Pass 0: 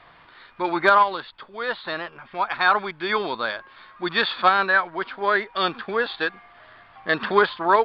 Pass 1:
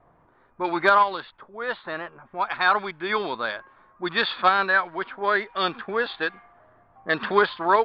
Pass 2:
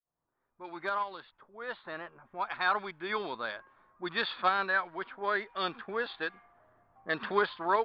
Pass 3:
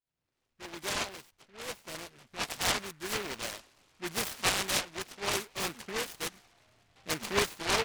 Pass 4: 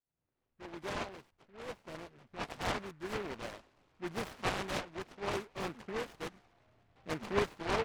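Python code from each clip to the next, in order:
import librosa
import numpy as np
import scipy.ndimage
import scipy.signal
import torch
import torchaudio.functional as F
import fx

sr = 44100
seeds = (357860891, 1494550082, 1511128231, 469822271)

y1 = fx.env_lowpass(x, sr, base_hz=630.0, full_db=-17.5)
y1 = y1 * librosa.db_to_amplitude(-1.5)
y2 = fx.fade_in_head(y1, sr, length_s=2.06)
y2 = y2 * librosa.db_to_amplitude(-8.5)
y3 = fx.peak_eq(y2, sr, hz=86.0, db=6.0, octaves=2.0)
y3 = fx.noise_mod_delay(y3, sr, seeds[0], noise_hz=1600.0, depth_ms=0.27)
y3 = y3 * librosa.db_to_amplitude(-1.5)
y4 = fx.lowpass(y3, sr, hz=1000.0, slope=6)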